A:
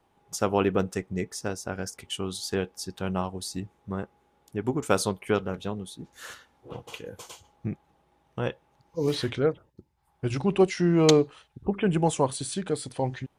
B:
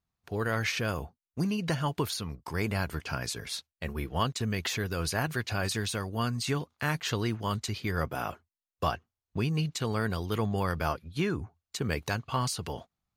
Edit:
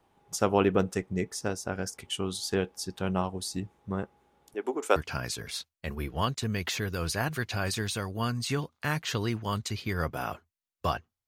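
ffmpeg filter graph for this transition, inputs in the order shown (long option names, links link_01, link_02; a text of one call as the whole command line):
ffmpeg -i cue0.wav -i cue1.wav -filter_complex "[0:a]asettb=1/sr,asplit=3[link_01][link_02][link_03];[link_01]atrim=end=4.544[link_04];[link_02]atrim=start=4.54:end=4.96,asetpts=PTS-STARTPTS,afade=type=in:duration=0.004:curve=qsin,afade=type=out:start_time=0.416:duration=0.004:curve=qsin,highpass=frequency=340:width=0.5412,highpass=frequency=340:width=1.3066[link_05];[link_03]atrim=start=4.956[link_06];[link_04][link_05]acrossfade=duration=0.004:curve1=hsin:curve2=qsin[link_07];[link_07][link_06]acrossfade=duration=0.004:curve1=qsin:curve2=hsin,apad=whole_dur=11.27,atrim=end=11.27,atrim=end=4.962[link_08];[1:a]atrim=start=2.938:end=9.25[link_09];[link_08][link_09]acrossfade=duration=0.004:curve1=hsin:curve2=hsin" out.wav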